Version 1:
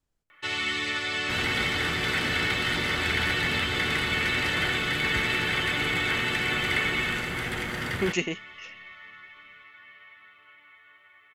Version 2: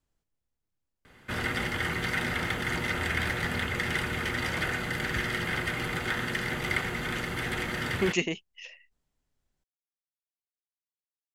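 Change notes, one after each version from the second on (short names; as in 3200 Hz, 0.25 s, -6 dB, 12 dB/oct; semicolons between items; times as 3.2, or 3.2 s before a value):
first sound: muted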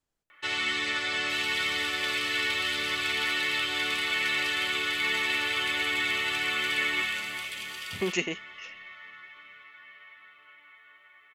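first sound: unmuted; second sound: add brick-wall FIR high-pass 2300 Hz; master: add low shelf 190 Hz -9.5 dB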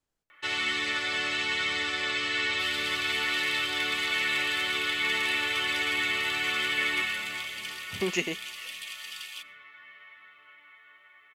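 second sound: entry +1.30 s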